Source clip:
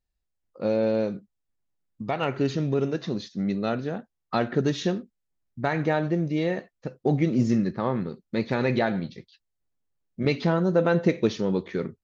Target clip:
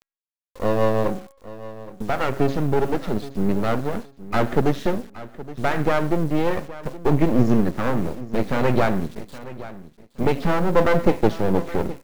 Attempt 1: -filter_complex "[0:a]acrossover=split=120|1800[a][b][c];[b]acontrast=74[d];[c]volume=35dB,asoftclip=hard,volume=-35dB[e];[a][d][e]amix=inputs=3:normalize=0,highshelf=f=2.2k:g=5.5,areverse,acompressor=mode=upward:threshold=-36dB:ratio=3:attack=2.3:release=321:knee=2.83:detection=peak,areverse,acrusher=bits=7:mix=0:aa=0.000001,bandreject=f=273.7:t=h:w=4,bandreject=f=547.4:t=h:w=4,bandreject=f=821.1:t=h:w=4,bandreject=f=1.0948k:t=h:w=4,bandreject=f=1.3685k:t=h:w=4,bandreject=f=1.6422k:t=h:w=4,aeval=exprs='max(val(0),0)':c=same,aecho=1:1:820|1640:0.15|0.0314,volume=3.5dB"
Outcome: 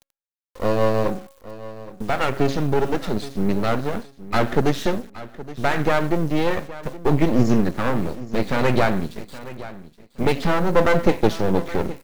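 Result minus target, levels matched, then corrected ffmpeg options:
4000 Hz band +4.0 dB
-filter_complex "[0:a]acrossover=split=120|1800[a][b][c];[b]acontrast=74[d];[c]volume=35dB,asoftclip=hard,volume=-35dB[e];[a][d][e]amix=inputs=3:normalize=0,highshelf=f=2.2k:g=-4.5,areverse,acompressor=mode=upward:threshold=-36dB:ratio=3:attack=2.3:release=321:knee=2.83:detection=peak,areverse,acrusher=bits=7:mix=0:aa=0.000001,bandreject=f=273.7:t=h:w=4,bandreject=f=547.4:t=h:w=4,bandreject=f=821.1:t=h:w=4,bandreject=f=1.0948k:t=h:w=4,bandreject=f=1.3685k:t=h:w=4,bandreject=f=1.6422k:t=h:w=4,aeval=exprs='max(val(0),0)':c=same,aecho=1:1:820|1640:0.15|0.0314,volume=3.5dB"

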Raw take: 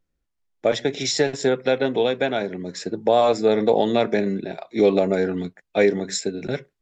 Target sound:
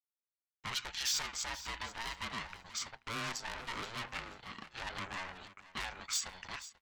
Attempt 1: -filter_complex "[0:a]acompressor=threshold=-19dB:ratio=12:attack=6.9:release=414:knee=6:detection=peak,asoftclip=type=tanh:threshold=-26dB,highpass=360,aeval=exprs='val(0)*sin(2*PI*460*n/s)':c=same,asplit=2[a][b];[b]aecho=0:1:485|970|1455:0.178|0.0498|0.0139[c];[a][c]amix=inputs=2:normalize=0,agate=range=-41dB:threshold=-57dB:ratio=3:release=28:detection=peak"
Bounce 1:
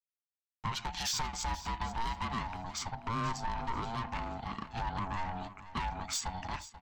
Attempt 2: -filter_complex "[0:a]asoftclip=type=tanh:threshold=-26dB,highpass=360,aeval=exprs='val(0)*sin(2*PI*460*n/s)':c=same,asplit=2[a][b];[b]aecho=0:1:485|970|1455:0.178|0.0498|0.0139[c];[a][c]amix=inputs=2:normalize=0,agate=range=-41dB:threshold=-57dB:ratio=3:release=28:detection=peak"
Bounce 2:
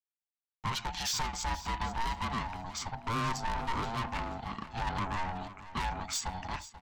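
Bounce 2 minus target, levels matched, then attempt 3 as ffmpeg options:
1000 Hz band +6.5 dB
-filter_complex "[0:a]asoftclip=type=tanh:threshold=-26dB,highpass=1.2k,aeval=exprs='val(0)*sin(2*PI*460*n/s)':c=same,asplit=2[a][b];[b]aecho=0:1:485|970|1455:0.178|0.0498|0.0139[c];[a][c]amix=inputs=2:normalize=0,agate=range=-41dB:threshold=-57dB:ratio=3:release=28:detection=peak"

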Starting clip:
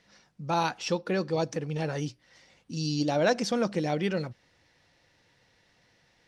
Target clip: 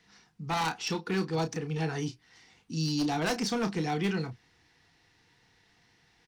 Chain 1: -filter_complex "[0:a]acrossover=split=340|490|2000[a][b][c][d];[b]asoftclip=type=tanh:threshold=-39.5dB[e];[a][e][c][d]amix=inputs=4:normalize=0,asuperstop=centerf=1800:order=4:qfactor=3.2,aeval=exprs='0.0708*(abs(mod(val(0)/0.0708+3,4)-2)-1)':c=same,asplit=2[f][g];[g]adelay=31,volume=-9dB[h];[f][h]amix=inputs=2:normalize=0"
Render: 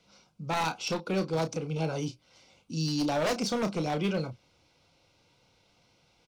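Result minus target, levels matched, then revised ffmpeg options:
500 Hz band +2.5 dB
-filter_complex "[0:a]acrossover=split=340|490|2000[a][b][c][d];[b]asoftclip=type=tanh:threshold=-39.5dB[e];[a][e][c][d]amix=inputs=4:normalize=0,asuperstop=centerf=570:order=4:qfactor=3.2,aeval=exprs='0.0708*(abs(mod(val(0)/0.0708+3,4)-2)-1)':c=same,asplit=2[f][g];[g]adelay=31,volume=-9dB[h];[f][h]amix=inputs=2:normalize=0"

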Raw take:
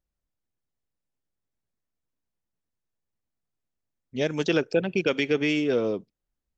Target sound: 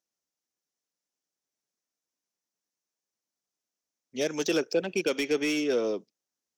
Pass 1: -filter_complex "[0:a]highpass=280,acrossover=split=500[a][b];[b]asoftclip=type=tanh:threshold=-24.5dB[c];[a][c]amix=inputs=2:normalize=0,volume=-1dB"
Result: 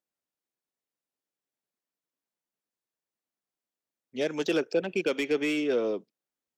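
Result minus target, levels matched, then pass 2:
8000 Hz band -8.5 dB
-filter_complex "[0:a]highpass=280,equalizer=f=5.9k:w=1.9:g=12.5,acrossover=split=500[a][b];[b]asoftclip=type=tanh:threshold=-24.5dB[c];[a][c]amix=inputs=2:normalize=0,volume=-1dB"

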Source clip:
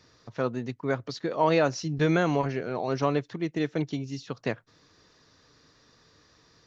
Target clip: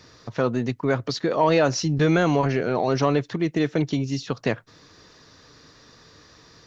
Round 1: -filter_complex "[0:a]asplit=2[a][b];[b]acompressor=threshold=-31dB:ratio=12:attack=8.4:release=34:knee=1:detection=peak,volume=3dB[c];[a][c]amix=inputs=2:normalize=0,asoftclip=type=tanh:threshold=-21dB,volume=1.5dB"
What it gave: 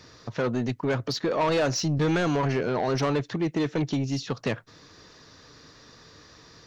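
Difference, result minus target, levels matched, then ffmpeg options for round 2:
soft clip: distortion +15 dB
-filter_complex "[0:a]asplit=2[a][b];[b]acompressor=threshold=-31dB:ratio=12:attack=8.4:release=34:knee=1:detection=peak,volume=3dB[c];[a][c]amix=inputs=2:normalize=0,asoftclip=type=tanh:threshold=-9dB,volume=1.5dB"

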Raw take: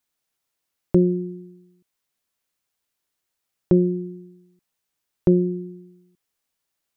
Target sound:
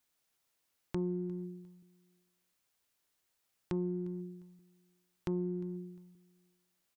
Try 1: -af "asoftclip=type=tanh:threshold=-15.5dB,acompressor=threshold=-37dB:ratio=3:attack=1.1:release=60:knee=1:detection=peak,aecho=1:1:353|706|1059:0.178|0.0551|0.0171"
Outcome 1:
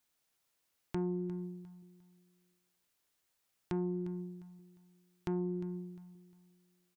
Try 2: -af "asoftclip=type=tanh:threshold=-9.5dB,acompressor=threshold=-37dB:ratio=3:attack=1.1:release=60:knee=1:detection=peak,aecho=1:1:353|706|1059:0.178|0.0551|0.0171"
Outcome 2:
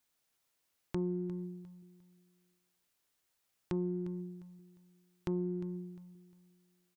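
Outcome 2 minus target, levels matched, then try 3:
echo-to-direct +6.5 dB
-af "asoftclip=type=tanh:threshold=-9.5dB,acompressor=threshold=-37dB:ratio=3:attack=1.1:release=60:knee=1:detection=peak,aecho=1:1:353|706:0.0841|0.0261"

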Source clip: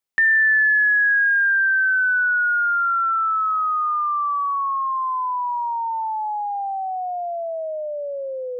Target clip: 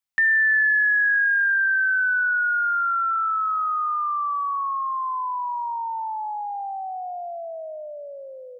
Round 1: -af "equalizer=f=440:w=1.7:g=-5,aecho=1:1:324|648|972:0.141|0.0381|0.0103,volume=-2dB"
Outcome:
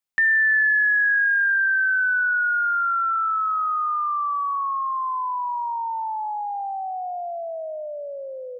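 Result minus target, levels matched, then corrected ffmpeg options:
500 Hz band +3.5 dB
-af "equalizer=f=440:w=1.7:g=-12.5,aecho=1:1:324|648|972:0.141|0.0381|0.0103,volume=-2dB"

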